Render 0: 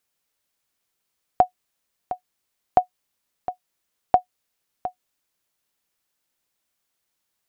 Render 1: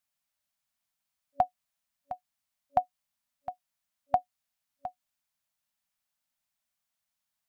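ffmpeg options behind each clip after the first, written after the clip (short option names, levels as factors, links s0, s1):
-af "afftfilt=real='re*(1-between(b*sr/4096,270,570))':imag='im*(1-between(b*sr/4096,270,570))':win_size=4096:overlap=0.75,volume=0.422"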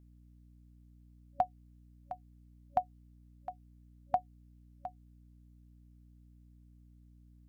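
-af "aeval=exprs='val(0)+0.00224*(sin(2*PI*60*n/s)+sin(2*PI*2*60*n/s)/2+sin(2*PI*3*60*n/s)/3+sin(2*PI*4*60*n/s)/4+sin(2*PI*5*60*n/s)/5)':c=same,volume=0.596"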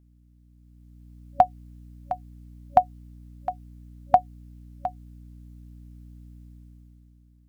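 -af "dynaudnorm=f=140:g=13:m=3.98,volume=1.19"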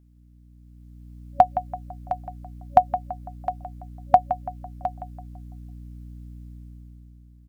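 -filter_complex "[0:a]asplit=2[s0][s1];[s1]adelay=167,lowpass=f=2000:p=1,volume=0.299,asplit=2[s2][s3];[s3]adelay=167,lowpass=f=2000:p=1,volume=0.44,asplit=2[s4][s5];[s5]adelay=167,lowpass=f=2000:p=1,volume=0.44,asplit=2[s6][s7];[s7]adelay=167,lowpass=f=2000:p=1,volume=0.44,asplit=2[s8][s9];[s9]adelay=167,lowpass=f=2000:p=1,volume=0.44[s10];[s0][s2][s4][s6][s8][s10]amix=inputs=6:normalize=0,volume=1.26"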